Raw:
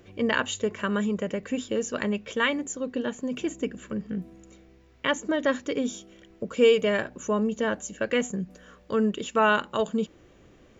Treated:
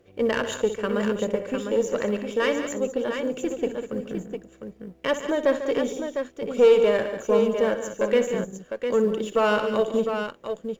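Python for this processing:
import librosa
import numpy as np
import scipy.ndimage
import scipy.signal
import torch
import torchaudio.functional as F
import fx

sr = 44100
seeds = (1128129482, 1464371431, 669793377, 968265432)

y = fx.law_mismatch(x, sr, coded='A')
y = fx.tube_stage(y, sr, drive_db=18.0, bias=0.4)
y = fx.peak_eq(y, sr, hz=500.0, db=9.0, octaves=0.84)
y = fx.echo_multitap(y, sr, ms=(62, 145, 197, 704), db=(-12.0, -12.0, -12.0, -7.0))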